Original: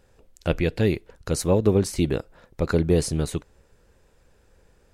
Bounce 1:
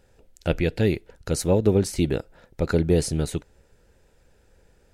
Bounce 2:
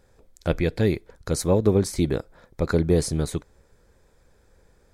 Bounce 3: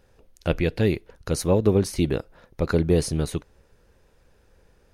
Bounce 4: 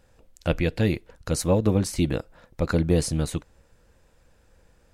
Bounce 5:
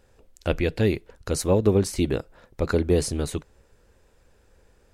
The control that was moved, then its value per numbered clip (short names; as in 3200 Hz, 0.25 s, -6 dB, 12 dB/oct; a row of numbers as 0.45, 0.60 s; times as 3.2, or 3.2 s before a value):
notch, frequency: 1100, 2800, 7600, 400, 160 Hz